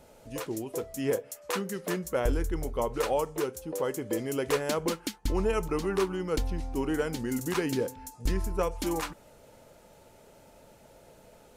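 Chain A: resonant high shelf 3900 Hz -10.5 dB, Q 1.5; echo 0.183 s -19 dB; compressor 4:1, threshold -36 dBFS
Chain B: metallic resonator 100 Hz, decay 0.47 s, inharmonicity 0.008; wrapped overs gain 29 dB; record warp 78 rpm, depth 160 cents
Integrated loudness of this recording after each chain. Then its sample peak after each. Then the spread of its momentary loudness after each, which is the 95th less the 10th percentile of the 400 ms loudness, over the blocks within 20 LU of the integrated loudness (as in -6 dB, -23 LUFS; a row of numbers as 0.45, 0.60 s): -40.0, -42.5 LUFS; -22.5, -25.5 dBFS; 17, 11 LU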